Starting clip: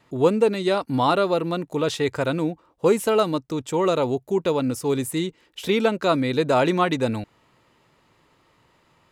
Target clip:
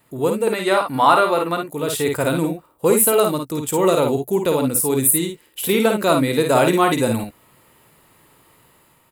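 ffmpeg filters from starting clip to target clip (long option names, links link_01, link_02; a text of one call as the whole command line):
ffmpeg -i in.wav -filter_complex "[0:a]asettb=1/sr,asplit=3[link_01][link_02][link_03];[link_01]atrim=end=0.474[link_04];[link_02]atrim=start=0.47:end=1.61,asetpts=PTS-STARTPTS,afade=type=in:duration=0.004:curve=qsin,afade=type=out:start_time=1.136:duration=0.004:curve=qsin,equalizer=frequency=1400:width_type=o:width=2.8:gain=13[link_05];[link_03]atrim=start=1.606[link_06];[link_04][link_05]acrossfade=duration=0.004:curve1=hsin:curve2=qsin[link_07];[link_07][link_06]acrossfade=duration=0.004:curve1=qsin:curve2=hsin,asplit=2[link_08][link_09];[link_09]aecho=0:1:53|67:0.562|0.224[link_10];[link_08][link_10]amix=inputs=2:normalize=0,aexciter=amount=6.5:drive=7.5:freq=8400,dynaudnorm=framelen=150:gausssize=7:maxgain=5.5dB,volume=-1dB" out.wav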